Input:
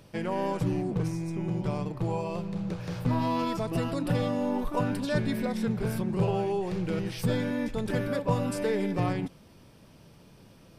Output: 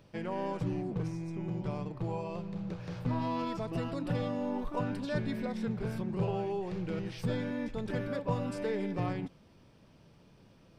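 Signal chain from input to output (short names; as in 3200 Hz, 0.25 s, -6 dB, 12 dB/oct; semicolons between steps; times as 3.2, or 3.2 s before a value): bell 12000 Hz -13 dB 0.99 oct; gain -5.5 dB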